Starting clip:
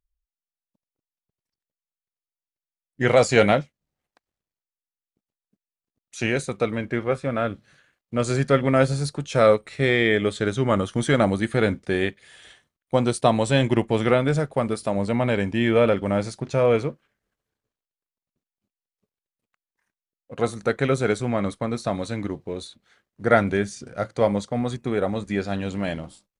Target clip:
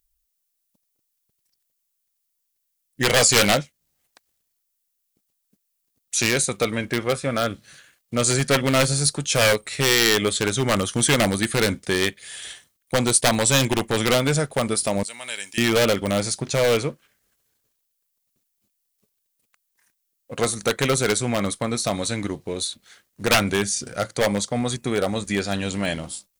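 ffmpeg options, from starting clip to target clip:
-filter_complex "[0:a]asettb=1/sr,asplit=3[a][b][c];[a]atrim=end=15.034[d];[b]atrim=start=15.03:end=15.58,asetpts=PTS-STARTPTS,afade=t=in:d=0.004:c=qsin,afade=t=out:st=0.546:d=0.004:c=qsin,aderivative[e];[c]atrim=start=15.576[f];[d][e]acrossfade=d=0.004:c1=hsin:c2=qsin[g];[g][f]acrossfade=d=0.004:c1=qsin:c2=hsin,aeval=exprs='0.211*(abs(mod(val(0)/0.211+3,4)-2)-1)':c=same,asplit=2[h][i];[i]acompressor=threshold=-34dB:ratio=6,volume=-2.5dB[j];[h][j]amix=inputs=2:normalize=0,crystalizer=i=4.5:c=0,volume=-1dB"

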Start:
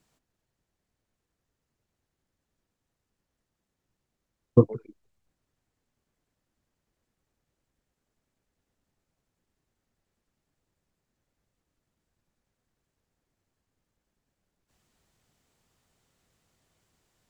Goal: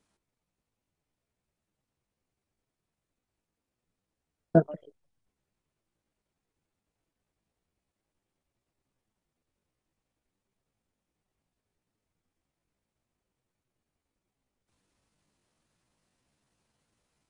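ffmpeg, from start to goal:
-af "asetrate=60591,aresample=44100,atempo=0.727827,aresample=22050,aresample=44100,volume=-3.5dB"

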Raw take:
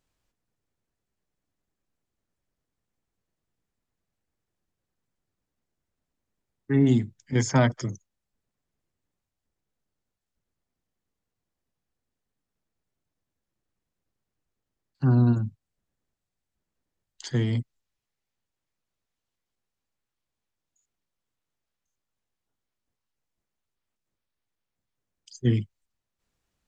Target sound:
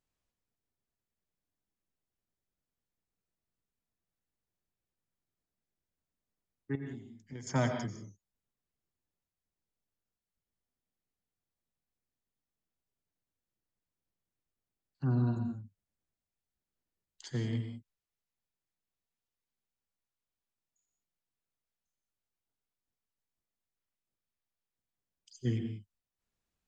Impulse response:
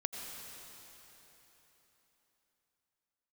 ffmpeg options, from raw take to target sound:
-filter_complex "[0:a]asettb=1/sr,asplit=3[a][b][c];[a]atrim=end=6.754[d];[b]atrim=start=6.75:end=7.47,asetpts=PTS-STARTPTS,afade=t=in:d=0.004:c=qsin,afade=t=out:st=0.716:d=0.004:c=qsin,acompressor=threshold=-34dB:ratio=6[e];[c]atrim=start=7.466[f];[d][e]acrossfade=d=0.004:c1=hsin:c2=qsin[g];[g][f]acrossfade=d=0.004:c1=qsin:c2=hsin[h];[1:a]atrim=start_sample=2205,afade=t=out:st=0.25:d=0.01,atrim=end_sample=11466[i];[h][i]afir=irnorm=-1:irlink=0,volume=-8.5dB"

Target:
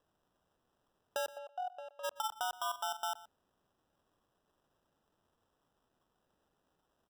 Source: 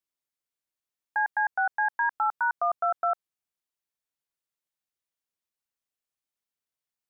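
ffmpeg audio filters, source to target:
-filter_complex "[0:a]aderivative,acompressor=threshold=-44dB:ratio=2,acrusher=samples=20:mix=1:aa=0.000001,asplit=3[a][b][c];[a]afade=t=out:st=1.34:d=0.02[d];[b]asplit=3[e][f][g];[e]bandpass=f=730:t=q:w=8,volume=0dB[h];[f]bandpass=f=1.09k:t=q:w=8,volume=-6dB[i];[g]bandpass=f=2.44k:t=q:w=8,volume=-9dB[j];[h][i][j]amix=inputs=3:normalize=0,afade=t=in:st=1.34:d=0.02,afade=t=out:st=2.03:d=0.02[k];[c]afade=t=in:st=2.03:d=0.02[l];[d][k][l]amix=inputs=3:normalize=0,asettb=1/sr,asplit=3[m][n][o];[m]atrim=end=2.604[p];[n]atrim=start=2.6:end=3.01,asetpts=PTS-STARTPTS,afade=t=in:d=0.004:c=qsin,afade=t=out:st=0.406:d=0.004:c=qsin,asplit=2[q][r];[r]adelay=43,volume=-11dB[s];[q][s]amix=inputs=2:normalize=0,atrim=end_sample=18081[t];[o]atrim=start=3.006[u];[p][t]acrossfade=d=0.004:c1=hsin:c2=qsin[v];[v][u]acrossfade=d=0.004:c1=qsin:c2=hsin,asplit=2[w][x];[x]adelay=122.4,volume=-18dB,highshelf=f=4k:g=-2.76[y];[w][y]amix=inputs=2:normalize=0,volume=8dB"

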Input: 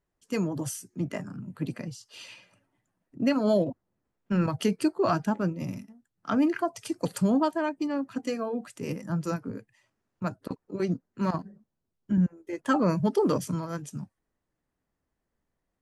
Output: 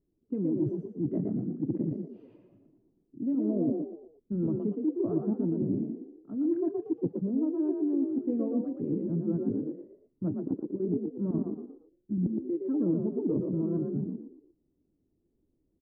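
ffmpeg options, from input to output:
-filter_complex "[0:a]lowpass=f=320:t=q:w=3.4,areverse,acompressor=threshold=-30dB:ratio=10,areverse,asplit=5[a][b][c][d][e];[b]adelay=117,afreqshift=38,volume=-4.5dB[f];[c]adelay=234,afreqshift=76,volume=-13.6dB[g];[d]adelay=351,afreqshift=114,volume=-22.7dB[h];[e]adelay=468,afreqshift=152,volume=-31.9dB[i];[a][f][g][h][i]amix=inputs=5:normalize=0,volume=3dB"

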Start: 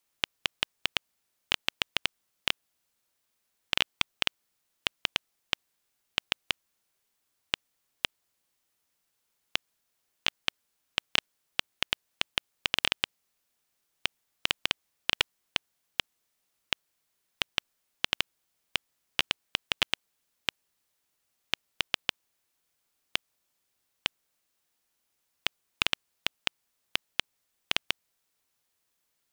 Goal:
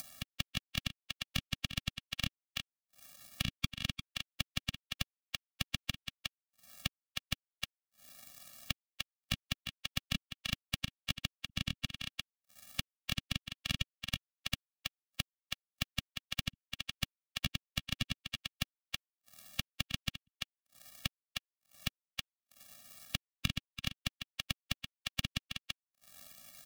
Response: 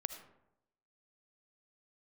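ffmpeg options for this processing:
-filter_complex "[0:a]acompressor=mode=upward:threshold=-30dB:ratio=2.5,equalizer=f=760:t=o:w=1.9:g=-11,asplit=2[a][b];[b]aecho=0:1:373:0.251[c];[a][c]amix=inputs=2:normalize=0,acrusher=bits=6:mix=0:aa=0.5,lowshelf=f=69:g=-6.5,acrossover=split=260[d][e];[e]acompressor=threshold=-42dB:ratio=10[f];[d][f]amix=inputs=2:normalize=0,atempo=1.1,afftfilt=real='re*eq(mod(floor(b*sr/1024/270),2),0)':imag='im*eq(mod(floor(b*sr/1024/270),2),0)':win_size=1024:overlap=0.75,volume=12.5dB"

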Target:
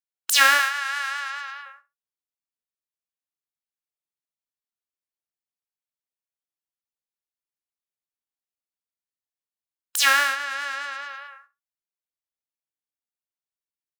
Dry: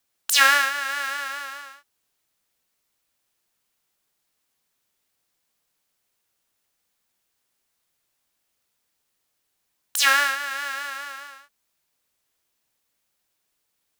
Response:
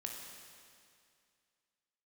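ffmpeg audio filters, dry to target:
-filter_complex "[0:a]asettb=1/sr,asplit=3[a][b][c];[a]atrim=end=0.594[d];[b]atrim=start=0.59:end=1.66,asetpts=PTS-STARTPTS,afade=t=in:d=0.004:c=qsin,afade=t=out:st=1.066:d=0.004:c=qsin,highpass=f=730:w=0.5412,highpass=f=730:w=1.3066[e];[c]atrim=start=1.656[f];[d][e]acrossfade=d=0.004:c1=hsin:c2=qsin[g];[g][f]acrossfade=d=0.004:c1=qsin:c2=hsin,afftdn=nr=24:nf=-45,asplit=2[h][i];[i]adelay=65,lowpass=f=3.3k:p=1,volume=-15dB,asplit=2[j][k];[k]adelay=65,lowpass=f=3.3k:p=1,volume=0.17[l];[h][j][l]amix=inputs=3:normalize=0"

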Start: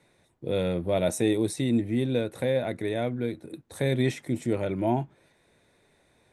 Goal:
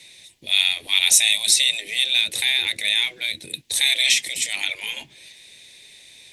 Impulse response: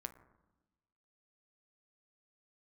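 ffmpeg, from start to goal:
-af "afftfilt=real='re*lt(hypot(re,im),0.0631)':imag='im*lt(hypot(re,im),0.0631)':win_size=1024:overlap=0.75,aexciter=amount=12.2:drive=9.2:freq=2.2k,aemphasis=mode=reproduction:type=50kf,volume=1.5dB"

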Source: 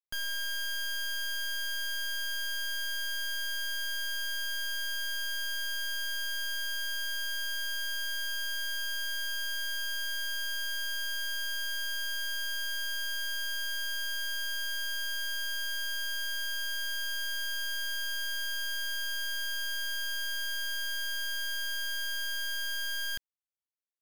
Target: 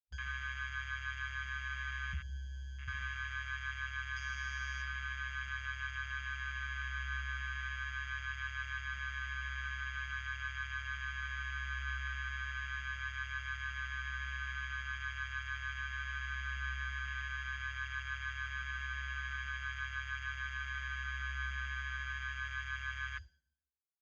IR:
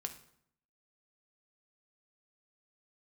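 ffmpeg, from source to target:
-filter_complex "[0:a]aecho=1:1:3.6:0.38,aeval=exprs='val(0)*sin(2*PI*67*n/s)':c=same,asettb=1/sr,asplit=3[a][b][c];[a]atrim=end=2.134[d];[b]atrim=start=2.13:end=2.88,asetpts=PTS-STARTPTS,afade=t=in:d=0.004:c=qsin,afade=t=out:st=0.746:d=0.004:c=qsin,acrossover=split=120[e][f];[f]acompressor=threshold=-40dB:ratio=10[g];[e][g]amix=inputs=2:normalize=0[h];[c]atrim=start=2.876[i];[d][h]acrossfade=d=0.004:c1=hsin:c2=qsin[j];[j][i]acrossfade=d=0.004:c1=qsin:c2=hsin,asettb=1/sr,asplit=3[k][l][m];[k]atrim=end=4.164[n];[l]atrim=start=4.16:end=4.82,asetpts=PTS-STARTPTS,afade=t=in:d=0.004:c=qsin,afade=t=out:st=0.656:d=0.004:c=qsin,equalizer=f=5.5k:t=o:w=0.54:g=13[o];[m]atrim=start=4.816[p];[n][o]acrossfade=d=0.004:c1=hsin:c2=qsin[q];[q][p]acrossfade=d=0.004:c1=qsin:c2=hsin[r];[1:a]atrim=start_sample=2205[s];[r][s]afir=irnorm=-1:irlink=0,flanger=delay=3.3:depth=9.8:regen=42:speed=0.21:shape=triangular,highpass=57,afwtdn=0.00562,aresample=16000,aresample=44100,volume=8dB"

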